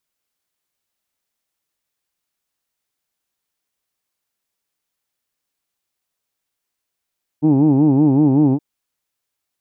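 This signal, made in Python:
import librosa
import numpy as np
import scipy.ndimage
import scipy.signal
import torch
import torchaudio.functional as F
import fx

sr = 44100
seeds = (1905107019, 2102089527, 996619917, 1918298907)

y = fx.formant_vowel(sr, seeds[0], length_s=1.17, hz=145.0, glide_st=-0.5, vibrato_hz=5.3, vibrato_st=1.5, f1_hz=300.0, f2_hz=850.0, f3_hz=2500.0)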